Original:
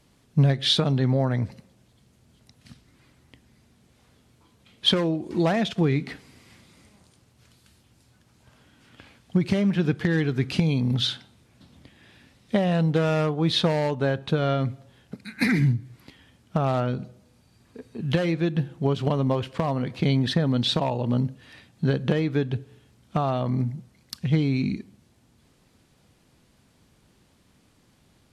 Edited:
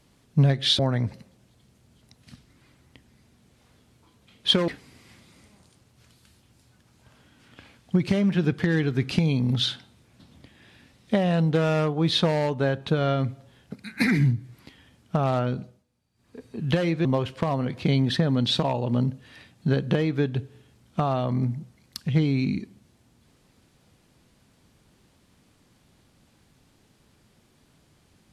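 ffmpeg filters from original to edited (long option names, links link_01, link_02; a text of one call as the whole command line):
ffmpeg -i in.wav -filter_complex "[0:a]asplit=6[link_01][link_02][link_03][link_04][link_05][link_06];[link_01]atrim=end=0.792[link_07];[link_02]atrim=start=1.168:end=5.062[link_08];[link_03]atrim=start=6.088:end=17.26,asetpts=PTS-STARTPTS,afade=type=out:start_time=10.892:duration=0.28:silence=0.158489[link_09];[link_04]atrim=start=17.26:end=17.55,asetpts=PTS-STARTPTS,volume=-16dB[link_10];[link_05]atrim=start=17.55:end=18.462,asetpts=PTS-STARTPTS,afade=type=in:duration=0.28:silence=0.158489[link_11];[link_06]atrim=start=19.218[link_12];[link_07][link_08]acrossfade=duration=0.004:curve1=hsin:curve2=hsin[link_13];[link_09][link_10][link_11]concat=n=3:v=0:a=1[link_14];[link_13][link_14]acrossfade=duration=0.004:curve1=hsin:curve2=hsin[link_15];[link_15][link_12]acrossfade=duration=0.004:curve1=hsin:curve2=hsin" out.wav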